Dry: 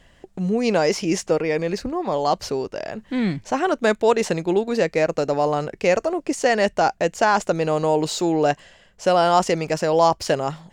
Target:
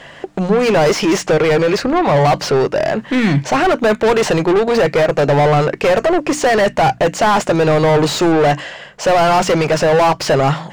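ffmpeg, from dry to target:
-filter_complex "[0:a]asplit=2[a][b];[b]highpass=f=720:p=1,volume=31dB,asoftclip=type=tanh:threshold=-4dB[c];[a][c]amix=inputs=2:normalize=0,lowpass=f=1.9k:p=1,volume=-6dB,equalizer=f=140:w=6.1:g=10.5,bandreject=f=60:t=h:w=6,bandreject=f=120:t=h:w=6,bandreject=f=180:t=h:w=6,bandreject=f=240:t=h:w=6,bandreject=f=300:t=h:w=6,volume=-1dB"

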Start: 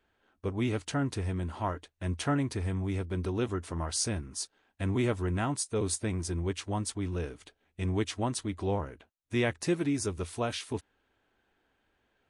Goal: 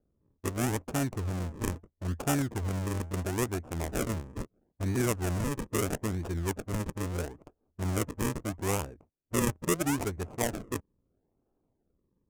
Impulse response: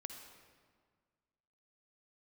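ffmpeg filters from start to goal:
-af "acrusher=samples=42:mix=1:aa=0.000001:lfo=1:lforange=42:lforate=0.76,aexciter=amount=5.2:drive=6.3:freq=6.2k,adynamicsmooth=sensitivity=7:basefreq=680"

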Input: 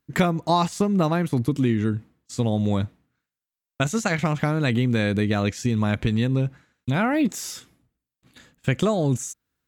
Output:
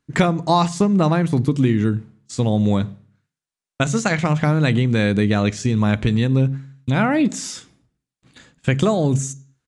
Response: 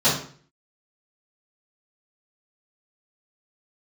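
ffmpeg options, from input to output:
-filter_complex "[0:a]asplit=2[a][b];[1:a]atrim=start_sample=2205,lowshelf=f=220:g=9,highshelf=f=6k:g=9[c];[b][c]afir=irnorm=-1:irlink=0,volume=-37.5dB[d];[a][d]amix=inputs=2:normalize=0,aresample=22050,aresample=44100,volume=3.5dB"

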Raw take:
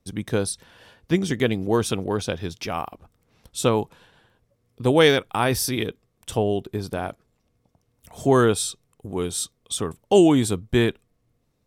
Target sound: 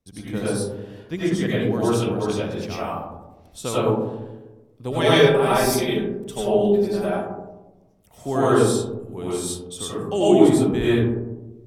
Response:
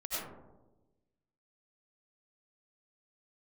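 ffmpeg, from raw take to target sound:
-filter_complex "[0:a]asettb=1/sr,asplit=3[a][b][c];[a]atrim=end=4.914[d];[b]atrim=start=4.91:end=7.07,asetpts=PTS-STARTPTS,afade=t=in:d=0.004:c=qsin,afade=t=out:st=2.156:d=0.004:c=qsin,aecho=1:1:5.1:0.94,atrim=end_sample=95256[e];[c]atrim=start=7.066[f];[d][e]acrossfade=d=0.004:c1=hsin:c2=qsin[g];[g][f]acrossfade=d=0.004:c1=qsin:c2=hsin[h];[1:a]atrim=start_sample=2205[i];[h][i]afir=irnorm=-1:irlink=0,volume=-3.5dB"

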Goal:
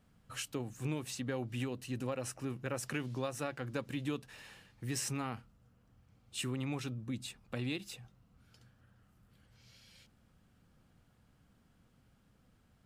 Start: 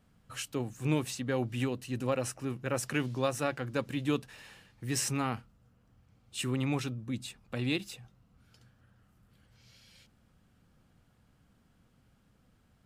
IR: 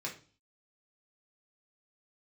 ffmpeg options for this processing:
-af "acompressor=threshold=-33dB:ratio=3,volume=-1.5dB"

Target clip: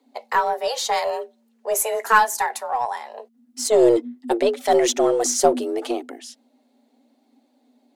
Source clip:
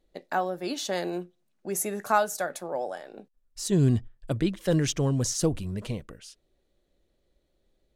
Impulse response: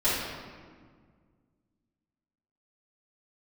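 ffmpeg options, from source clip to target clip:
-filter_complex "[0:a]flanger=delay=1:depth=5.3:regen=-40:speed=0.82:shape=triangular,afreqshift=230,asplit=2[a][b];[b]aeval=exprs='clip(val(0),-1,0.0251)':c=same,volume=-9dB[c];[a][c]amix=inputs=2:normalize=0,volume=9dB"

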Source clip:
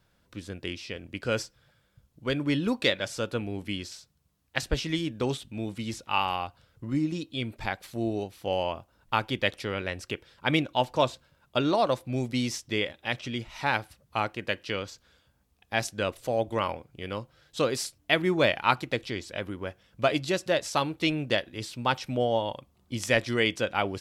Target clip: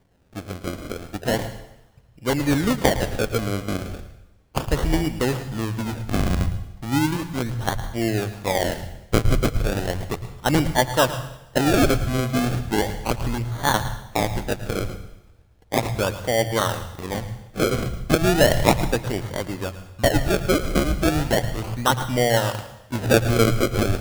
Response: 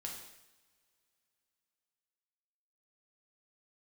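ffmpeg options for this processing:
-filter_complex "[0:a]acrusher=samples=33:mix=1:aa=0.000001:lfo=1:lforange=33:lforate=0.35,asplit=2[a][b];[b]asubboost=boost=9.5:cutoff=95[c];[1:a]atrim=start_sample=2205,adelay=109[d];[c][d]afir=irnorm=-1:irlink=0,volume=-9dB[e];[a][e]amix=inputs=2:normalize=0,volume=6dB"

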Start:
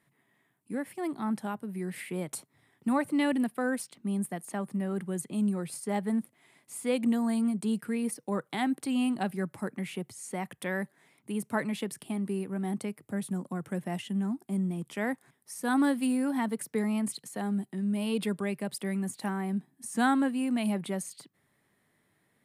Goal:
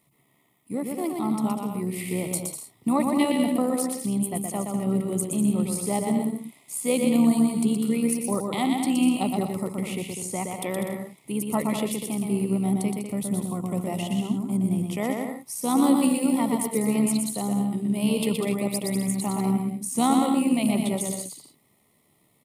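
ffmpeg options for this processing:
-filter_complex "[0:a]asuperstop=centerf=1600:order=4:qfactor=2.1,highshelf=f=10k:g=10.5,asplit=2[a][b];[b]aecho=0:1:120|198|248.7|281.7|303.1:0.631|0.398|0.251|0.158|0.1[c];[a][c]amix=inputs=2:normalize=0,tremolo=f=70:d=0.4,volume=6dB"

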